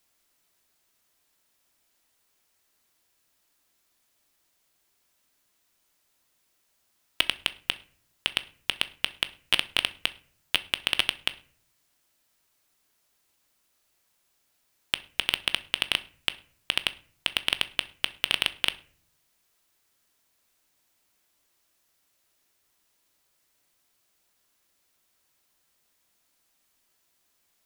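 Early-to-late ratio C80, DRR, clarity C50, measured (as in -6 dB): 23.0 dB, 11.0 dB, 18.5 dB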